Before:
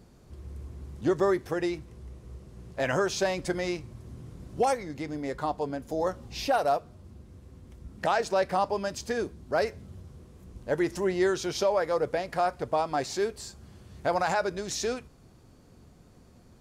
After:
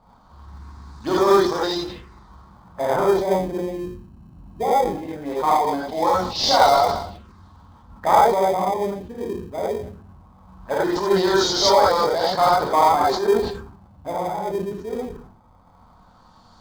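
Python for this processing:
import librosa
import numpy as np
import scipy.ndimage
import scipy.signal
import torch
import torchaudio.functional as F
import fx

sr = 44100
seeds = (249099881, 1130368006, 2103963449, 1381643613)

p1 = fx.low_shelf(x, sr, hz=290.0, db=-8.5)
p2 = fx.hum_notches(p1, sr, base_hz=60, count=7)
p3 = fx.echo_feedback(p2, sr, ms=112, feedback_pct=58, wet_db=-23)
p4 = fx.filter_lfo_lowpass(p3, sr, shape='sine', hz=0.19, low_hz=380.0, high_hz=5000.0, q=0.81)
p5 = fx.graphic_eq(p4, sr, hz=(125, 500, 1000, 2000, 4000, 8000), db=(-3, -3, 11, -4, 12, 4))
p6 = fx.env_phaser(p5, sr, low_hz=350.0, high_hz=2400.0, full_db=-31.0)
p7 = fx.rev_gated(p6, sr, seeds[0], gate_ms=110, shape='rising', drr_db=-6.0)
p8 = fx.sample_hold(p7, sr, seeds[1], rate_hz=1400.0, jitter_pct=0)
p9 = p7 + F.gain(torch.from_numpy(p8), -12.0).numpy()
p10 = fx.sustainer(p9, sr, db_per_s=74.0)
y = F.gain(torch.from_numpy(p10), 3.0).numpy()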